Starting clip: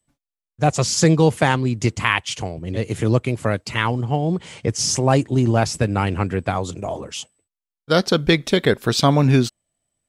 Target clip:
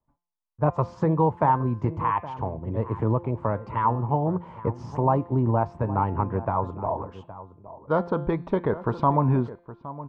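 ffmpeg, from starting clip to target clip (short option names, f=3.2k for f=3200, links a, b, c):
-filter_complex "[0:a]lowshelf=f=92:g=7,bandreject=f=750:w=12,bandreject=f=173.1:t=h:w=4,bandreject=f=346.2:t=h:w=4,bandreject=f=519.3:t=h:w=4,bandreject=f=692.4:t=h:w=4,bandreject=f=865.5:t=h:w=4,bandreject=f=1.0386k:t=h:w=4,bandreject=f=1.2117k:t=h:w=4,bandreject=f=1.3848k:t=h:w=4,bandreject=f=1.5579k:t=h:w=4,bandreject=f=1.731k:t=h:w=4,bandreject=f=1.9041k:t=h:w=4,bandreject=f=2.0772k:t=h:w=4,bandreject=f=2.2503k:t=h:w=4,bandreject=f=2.4234k:t=h:w=4,bandreject=f=2.5965k:t=h:w=4,bandreject=f=2.7696k:t=h:w=4,bandreject=f=2.9427k:t=h:w=4,bandreject=f=3.1158k:t=h:w=4,bandreject=f=3.2889k:t=h:w=4,bandreject=f=3.462k:t=h:w=4,bandreject=f=3.6351k:t=h:w=4,bandreject=f=3.8082k:t=h:w=4,bandreject=f=3.9813k:t=h:w=4,bandreject=f=4.1544k:t=h:w=4,bandreject=f=4.3275k:t=h:w=4,bandreject=f=4.5006k:t=h:w=4,alimiter=limit=-8dB:level=0:latency=1:release=216,lowpass=f=970:t=q:w=5.5,asplit=2[a][b];[b]adelay=816.3,volume=-15dB,highshelf=f=4k:g=-18.4[c];[a][c]amix=inputs=2:normalize=0,volume=-6dB"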